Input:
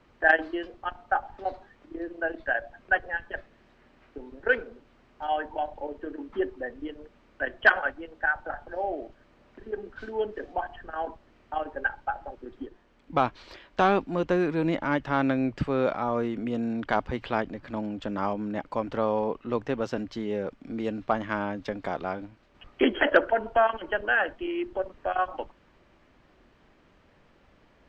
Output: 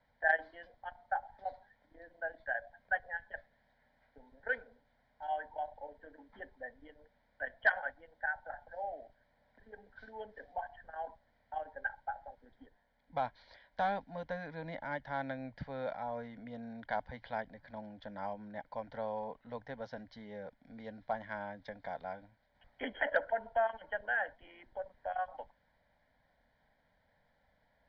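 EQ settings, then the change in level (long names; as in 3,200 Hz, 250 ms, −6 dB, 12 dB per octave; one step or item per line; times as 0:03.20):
high-frequency loss of the air 130 metres
low-shelf EQ 270 Hz −7 dB
phaser with its sweep stopped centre 1,800 Hz, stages 8
−7.0 dB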